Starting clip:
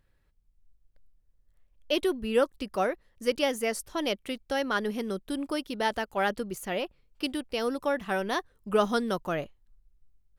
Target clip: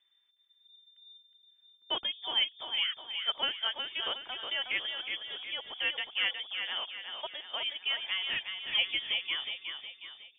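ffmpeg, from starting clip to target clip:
-filter_complex "[0:a]equalizer=f=250:w=1.9:g=-14.5,aecho=1:1:365|730|1095|1460|1825:0.501|0.226|0.101|0.0457|0.0206,lowpass=f=3.1k:t=q:w=0.5098,lowpass=f=3.1k:t=q:w=0.6013,lowpass=f=3.1k:t=q:w=0.9,lowpass=f=3.1k:t=q:w=2.563,afreqshift=-3600,asettb=1/sr,asplit=3[a][b][c];[a]atrim=end=6.144[d];[b]atrim=start=6.14:end=8.33,asetpts=PTS-STARTPTS,afade=t=in:d=0.004:c=qsin,afade=t=out:st=2.186:d=0.004:c=qsin,lowshelf=f=140:g=-10[e];[c]atrim=start=8.326[f];[d][e]acrossfade=d=0.004:c1=hsin:c2=qsin[g];[g][f]acrossfade=d=0.004:c1=qsin:c2=hsin,volume=-3.5dB"

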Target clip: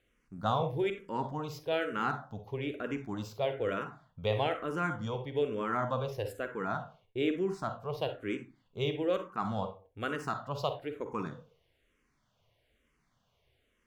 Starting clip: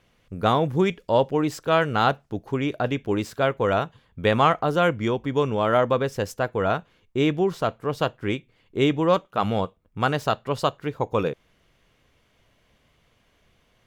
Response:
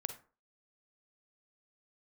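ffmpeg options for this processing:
-filter_complex "[1:a]atrim=start_sample=2205[a];[0:a][a]afir=irnorm=-1:irlink=0,asplit=2[b][c];[c]afreqshift=-1.1[d];[b][d]amix=inputs=2:normalize=1,volume=-7dB"

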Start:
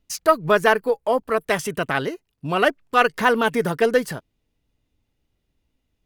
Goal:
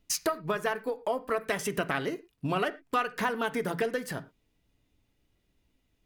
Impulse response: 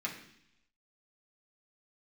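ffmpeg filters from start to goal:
-filter_complex "[0:a]acompressor=threshold=-27dB:ratio=10,asplit=2[a][b];[1:a]atrim=start_sample=2205,afade=t=out:st=0.16:d=0.01,atrim=end_sample=7497,asetrate=41013,aresample=44100[c];[b][c]afir=irnorm=-1:irlink=0,volume=-10.5dB[d];[a][d]amix=inputs=2:normalize=0"

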